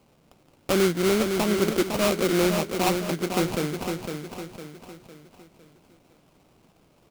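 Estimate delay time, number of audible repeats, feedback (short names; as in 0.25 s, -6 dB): 0.506 s, 4, 43%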